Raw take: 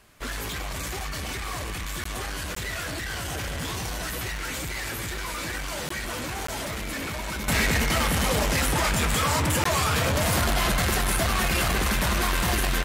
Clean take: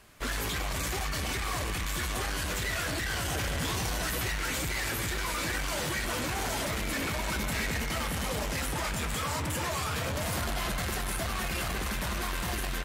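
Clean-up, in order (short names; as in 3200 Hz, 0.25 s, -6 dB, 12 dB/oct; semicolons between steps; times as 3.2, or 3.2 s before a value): de-click; interpolate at 2.04/2.55/5.89/6.47/9.64, 14 ms; gain correction -8.5 dB, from 7.48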